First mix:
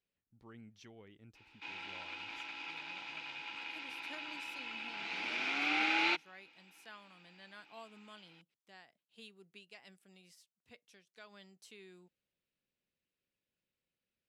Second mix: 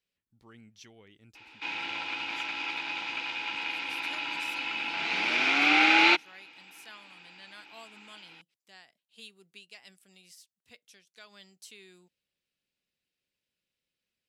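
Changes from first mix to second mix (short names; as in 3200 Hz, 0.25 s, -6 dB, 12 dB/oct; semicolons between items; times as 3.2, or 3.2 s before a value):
speech: add high shelf 2600 Hz +11.5 dB; background +11.0 dB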